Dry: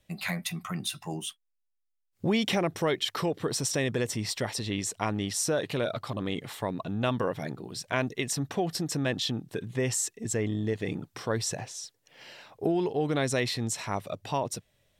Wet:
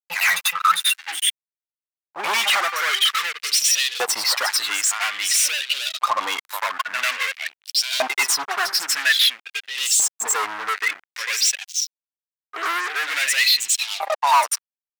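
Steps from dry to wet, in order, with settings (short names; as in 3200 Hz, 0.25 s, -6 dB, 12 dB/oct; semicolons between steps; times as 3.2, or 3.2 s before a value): per-bin expansion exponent 2; tone controls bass -11 dB, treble -1 dB; de-hum 394.3 Hz, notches 7; compressor 1.5:1, threshold -38 dBFS, peak gain reduction 4.5 dB; pre-echo 95 ms -14 dB; fuzz box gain 49 dB, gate -56 dBFS; LFO high-pass saw up 0.5 Hz 810–3700 Hz; gain -3.5 dB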